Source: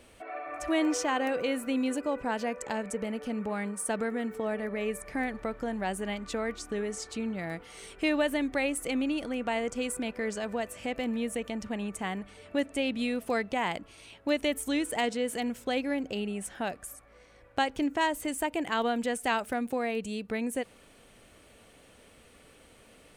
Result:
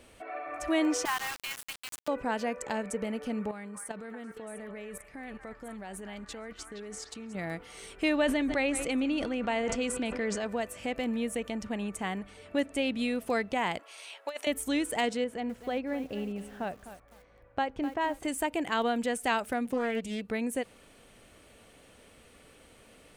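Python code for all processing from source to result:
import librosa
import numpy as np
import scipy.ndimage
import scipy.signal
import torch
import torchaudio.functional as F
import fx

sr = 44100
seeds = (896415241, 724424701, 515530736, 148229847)

y = fx.chain(x, sr, fx.steep_highpass(hz=820.0, slope=72),
    fx.quant_dither(seeds[0], bits=6, dither='none'), at=(1.05, 2.08))
y = fx.chain(y, sr, fx.level_steps(step_db=14),
    fx.echo_stepped(ms=234, hz=1300.0, octaves=1.4, feedback_pct=70, wet_db=-3.0), at=(3.51, 7.35))
y = fx.chain(y, sr, fx.lowpass(hz=7000.0, slope=12),
    fx.echo_single(ms=154, db=-18.0),
    fx.sustainer(db_per_s=40.0), at=(8.16, 10.47))
y = fx.chain(y, sr, fx.highpass(hz=550.0, slope=24),
    fx.over_compress(threshold_db=-34.0, ratio=-0.5), at=(13.79, 14.47))
y = fx.chain(y, sr, fx.lowpass(hz=1200.0, slope=6),
    fx.peak_eq(hz=310.0, db=-3.5, octaves=0.92),
    fx.echo_crushed(ms=254, feedback_pct=35, bits=8, wet_db=-12.0), at=(15.24, 18.23))
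y = fx.chain(y, sr, fx.hum_notches(base_hz=50, count=4),
    fx.doppler_dist(depth_ms=0.22), at=(19.65, 20.21))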